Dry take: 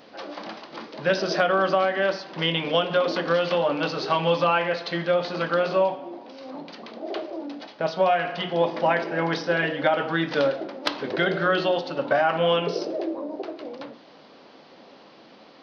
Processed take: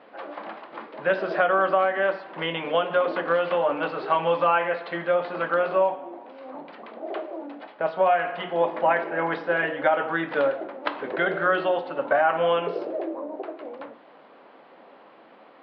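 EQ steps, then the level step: high-pass 1.1 kHz 6 dB/octave; low-pass 1.7 kHz 6 dB/octave; distance through air 470 m; +8.5 dB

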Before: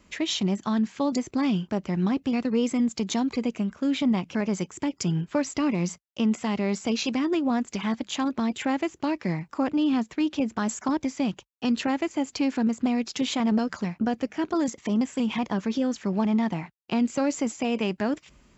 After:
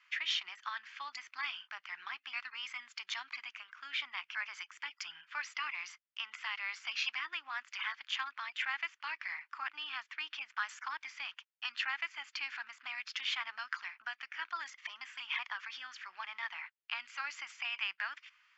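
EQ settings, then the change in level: inverse Chebyshev high-pass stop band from 530 Hz, stop band 50 dB; distance through air 280 m; band-stop 3.9 kHz, Q 11; +4.0 dB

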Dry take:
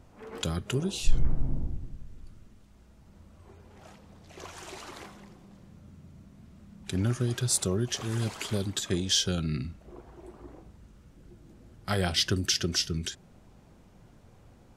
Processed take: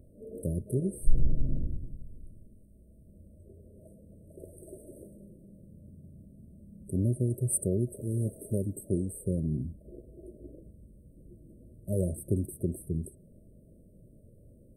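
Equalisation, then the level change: brick-wall FIR band-stop 660–8100 Hz; 0.0 dB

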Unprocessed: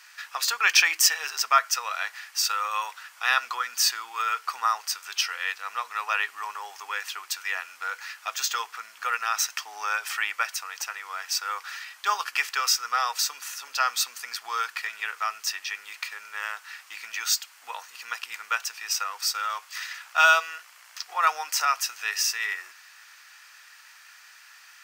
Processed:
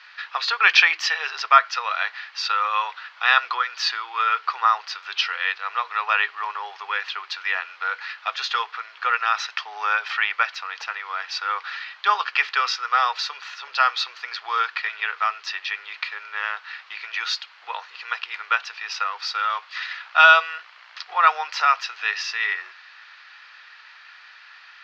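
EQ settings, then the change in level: elliptic band-pass 370–4100 Hz, stop band 40 dB; +6.0 dB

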